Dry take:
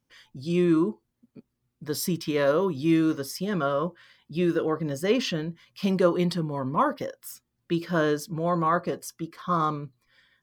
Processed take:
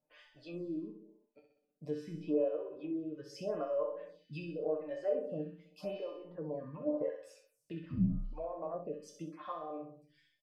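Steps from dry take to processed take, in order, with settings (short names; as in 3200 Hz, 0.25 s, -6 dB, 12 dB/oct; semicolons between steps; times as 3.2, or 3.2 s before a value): reverb removal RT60 0.94 s; treble ducked by the level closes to 370 Hz, closed at -22 dBFS; dynamic EQ 140 Hz, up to -6 dB, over -39 dBFS, Q 0.76; limiter -24.5 dBFS, peak gain reduction 7.5 dB; resonator 150 Hz, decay 0.25 s, harmonics all, mix 90%; small resonant body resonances 620/2600 Hz, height 17 dB, ringing for 20 ms; 7.89–8.33 frequency shift -420 Hz; doubler 30 ms -12 dB; feedback echo 64 ms, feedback 53%, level -7 dB; Schroeder reverb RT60 0.51 s, combs from 31 ms, DRR 14 dB; photocell phaser 0.86 Hz; gain +1 dB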